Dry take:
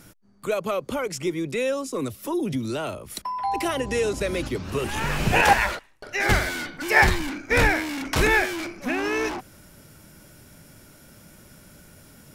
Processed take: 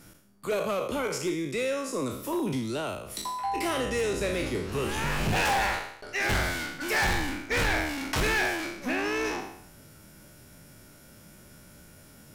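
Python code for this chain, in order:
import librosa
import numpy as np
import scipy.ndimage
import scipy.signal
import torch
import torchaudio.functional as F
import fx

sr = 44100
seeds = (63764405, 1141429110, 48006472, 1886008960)

y = fx.spec_trails(x, sr, decay_s=0.69)
y = np.clip(10.0 ** (18.5 / 20.0) * y, -1.0, 1.0) / 10.0 ** (18.5 / 20.0)
y = F.gain(torch.from_numpy(y), -4.5).numpy()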